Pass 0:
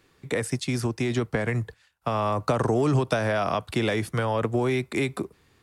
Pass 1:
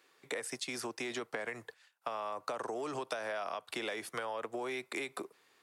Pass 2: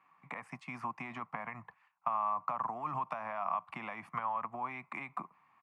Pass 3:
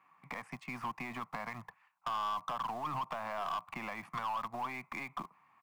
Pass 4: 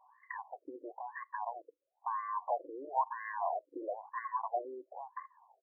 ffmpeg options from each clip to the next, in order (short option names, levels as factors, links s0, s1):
-af "highpass=490,acompressor=threshold=0.0251:ratio=6,volume=0.708"
-af "firequalizer=gain_entry='entry(110,0);entry(170,6);entry(410,-24);entry(720,-1);entry(1100,8);entry(1500,-10);entry(2300,-4);entry(3600,-25);entry(11000,-30)':delay=0.05:min_phase=1,volume=1.41"
-filter_complex "[0:a]asplit=2[s0][s1];[s1]acrusher=bits=5:dc=4:mix=0:aa=0.000001,volume=0.355[s2];[s0][s2]amix=inputs=2:normalize=0,asoftclip=type=tanh:threshold=0.0266,volume=1.12"
-af "asuperstop=centerf=1300:order=4:qfactor=1.5,afftfilt=real='re*between(b*sr/1024,370*pow(1500/370,0.5+0.5*sin(2*PI*1*pts/sr))/1.41,370*pow(1500/370,0.5+0.5*sin(2*PI*1*pts/sr))*1.41)':imag='im*between(b*sr/1024,370*pow(1500/370,0.5+0.5*sin(2*PI*1*pts/sr))/1.41,370*pow(1500/370,0.5+0.5*sin(2*PI*1*pts/sr))*1.41)':win_size=1024:overlap=0.75,volume=3.76"